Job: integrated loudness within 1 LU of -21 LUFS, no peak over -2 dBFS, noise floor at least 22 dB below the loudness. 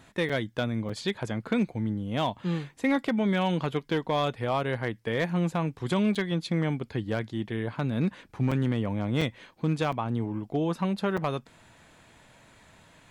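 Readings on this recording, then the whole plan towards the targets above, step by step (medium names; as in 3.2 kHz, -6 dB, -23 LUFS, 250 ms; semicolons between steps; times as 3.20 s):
clipped samples 0.3%; clipping level -18.0 dBFS; dropouts 7; longest dropout 5.4 ms; loudness -29.0 LUFS; peak level -18.0 dBFS; loudness target -21.0 LUFS
-> clip repair -18 dBFS; interpolate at 0.29/0.89/6.15/8.51/9.21/9.92/11.17 s, 5.4 ms; trim +8 dB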